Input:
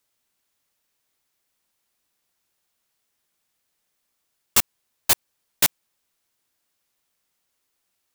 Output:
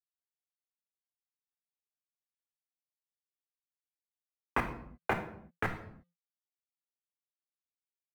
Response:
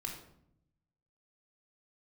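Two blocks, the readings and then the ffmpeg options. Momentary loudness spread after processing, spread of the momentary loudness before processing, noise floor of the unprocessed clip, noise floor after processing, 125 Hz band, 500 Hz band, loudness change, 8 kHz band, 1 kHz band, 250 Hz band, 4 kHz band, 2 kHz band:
12 LU, 6 LU, -76 dBFS, under -85 dBFS, -0.5 dB, -1.0 dB, -15.5 dB, -38.0 dB, -2.0 dB, -0.5 dB, -26.0 dB, -5.5 dB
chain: -filter_complex "[0:a]bandreject=f=346.6:t=h:w=4,bandreject=f=693.2:t=h:w=4,bandreject=f=1039.8:t=h:w=4,bandreject=f=1386.4:t=h:w=4,bandreject=f=1733:t=h:w=4,bandreject=f=2079.6:t=h:w=4,acompressor=threshold=0.0631:ratio=4,highpass=f=270:t=q:w=0.5412,highpass=f=270:t=q:w=1.307,lowpass=f=2200:t=q:w=0.5176,lowpass=f=2200:t=q:w=0.7071,lowpass=f=2200:t=q:w=1.932,afreqshift=-170,aeval=exprs='sgn(val(0))*max(abs(val(0))-0.002,0)':c=same,alimiter=level_in=1.33:limit=0.0631:level=0:latency=1:release=119,volume=0.75,asplit=2[s0][s1];[s1]lowshelf=f=230:g=10.5[s2];[1:a]atrim=start_sample=2205,afade=t=out:st=0.42:d=0.01,atrim=end_sample=18963,highshelf=f=5000:g=11.5[s3];[s2][s3]afir=irnorm=-1:irlink=0,volume=1.26[s4];[s0][s4]amix=inputs=2:normalize=0,volume=1.68"

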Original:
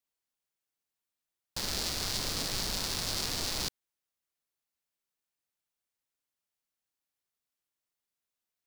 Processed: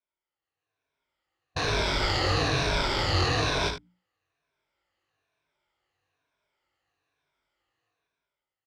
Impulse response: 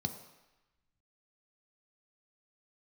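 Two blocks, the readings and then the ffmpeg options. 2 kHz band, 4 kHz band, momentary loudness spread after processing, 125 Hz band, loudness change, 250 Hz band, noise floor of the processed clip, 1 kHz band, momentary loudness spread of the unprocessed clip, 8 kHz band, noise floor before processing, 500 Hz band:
+12.0 dB, +4.0 dB, 7 LU, +14.0 dB, +6.5 dB, +9.5 dB, under -85 dBFS, +13.5 dB, 5 LU, -4.5 dB, under -85 dBFS, +14.0 dB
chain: -filter_complex "[0:a]afftfilt=real='re*pow(10,11/40*sin(2*PI*(1.6*log(max(b,1)*sr/1024/100)/log(2)-(-1.1)*(pts-256)/sr)))':imag='im*pow(10,11/40*sin(2*PI*(1.6*log(max(b,1)*sr/1024/100)/log(2)-(-1.1)*(pts-256)/sr)))':win_size=1024:overlap=0.75,asplit=2[s0][s1];[s1]asoftclip=type=tanh:threshold=0.0335,volume=0.447[s2];[s0][s2]amix=inputs=2:normalize=0,highpass=f=89:p=1,lowshelf=f=270:g=6,bandreject=f=60:t=h:w=6,bandreject=f=120:t=h:w=6,bandreject=f=180:t=h:w=6,bandreject=f=240:t=h:w=6,bandreject=f=300:t=h:w=6,asplit=2[s3][s4];[s4]aecho=0:1:55|77:0.335|0.299[s5];[s3][s5]amix=inputs=2:normalize=0,dynaudnorm=f=140:g=11:m=5.62,lowpass=2600,equalizer=f=210:t=o:w=0.6:g=-13.5,flanger=delay=19:depth=3.2:speed=2.9"

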